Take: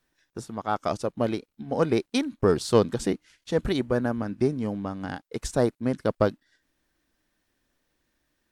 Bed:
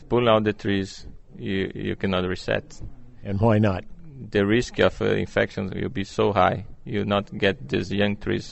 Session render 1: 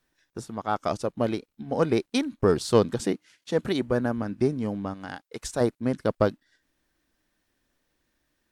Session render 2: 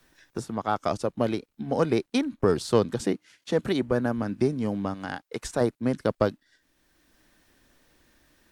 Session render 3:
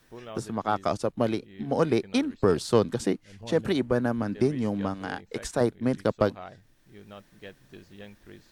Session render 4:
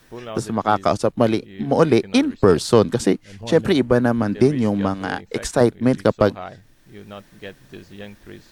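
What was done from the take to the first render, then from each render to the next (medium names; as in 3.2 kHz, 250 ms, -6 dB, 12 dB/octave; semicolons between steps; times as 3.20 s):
3.00–3.82 s: high-pass 140 Hz; 4.94–5.61 s: bass shelf 480 Hz -8.5 dB
three bands compressed up and down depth 40%
add bed -23.5 dB
trim +8.5 dB; peak limiter -1 dBFS, peak gain reduction 2.5 dB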